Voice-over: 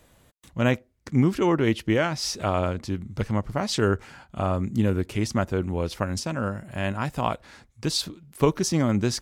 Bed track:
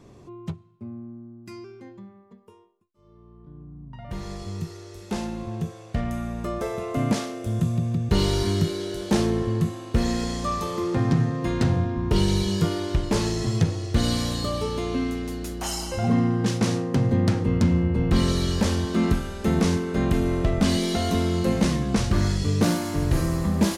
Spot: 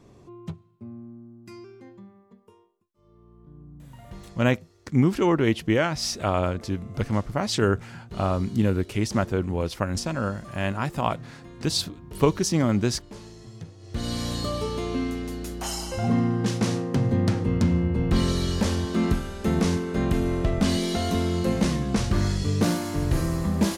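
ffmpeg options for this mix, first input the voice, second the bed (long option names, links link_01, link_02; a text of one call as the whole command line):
ffmpeg -i stem1.wav -i stem2.wav -filter_complex "[0:a]adelay=3800,volume=0.5dB[link_01];[1:a]volume=14.5dB,afade=type=out:start_time=3.75:duration=0.75:silence=0.158489,afade=type=in:start_time=13.78:duration=0.58:silence=0.133352[link_02];[link_01][link_02]amix=inputs=2:normalize=0" out.wav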